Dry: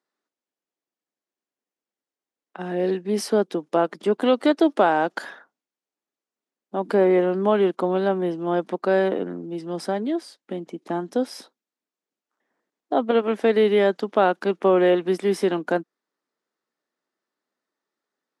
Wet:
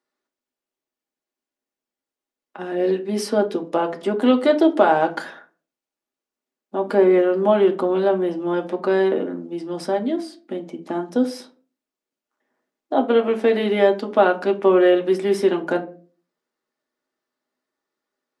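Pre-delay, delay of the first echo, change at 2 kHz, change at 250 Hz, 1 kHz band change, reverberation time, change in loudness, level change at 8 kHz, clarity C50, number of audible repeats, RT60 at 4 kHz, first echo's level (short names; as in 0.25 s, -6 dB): 3 ms, none, +1.5 dB, +2.5 dB, +1.5 dB, 0.40 s, +2.5 dB, n/a, 15.5 dB, none, 0.25 s, none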